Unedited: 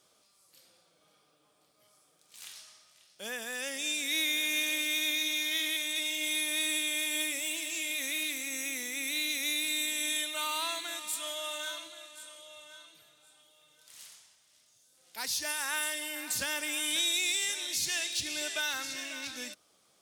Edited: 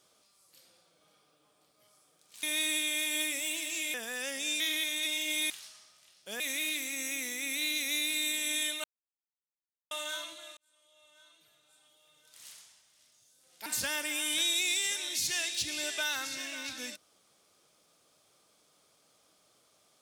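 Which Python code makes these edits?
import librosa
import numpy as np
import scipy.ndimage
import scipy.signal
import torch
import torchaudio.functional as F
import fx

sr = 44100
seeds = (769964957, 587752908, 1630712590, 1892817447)

y = fx.edit(x, sr, fx.swap(start_s=2.43, length_s=0.9, other_s=6.43, other_length_s=1.51),
    fx.cut(start_s=3.99, length_s=1.54),
    fx.silence(start_s=10.38, length_s=1.07),
    fx.fade_in_span(start_s=12.11, length_s=1.87),
    fx.cut(start_s=15.2, length_s=1.04), tone=tone)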